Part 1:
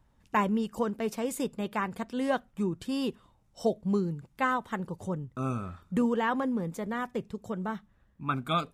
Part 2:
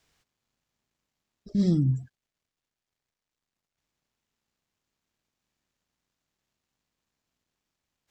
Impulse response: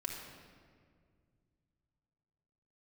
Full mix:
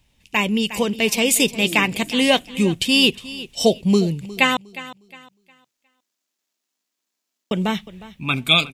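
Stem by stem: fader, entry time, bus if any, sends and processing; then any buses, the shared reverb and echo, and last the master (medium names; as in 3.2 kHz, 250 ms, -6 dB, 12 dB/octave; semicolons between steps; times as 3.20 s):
+2.0 dB, 0.00 s, muted 4.57–7.51 s, no send, echo send -17 dB, resonant high shelf 1.9 kHz +10 dB, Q 3
-16.0 dB, 0.00 s, send -5 dB, no echo send, high-pass 220 Hz 24 dB/octave; treble shelf 3.6 kHz +11.5 dB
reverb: on, RT60 2.0 s, pre-delay 3 ms
echo: feedback delay 359 ms, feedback 26%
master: level rider gain up to 11 dB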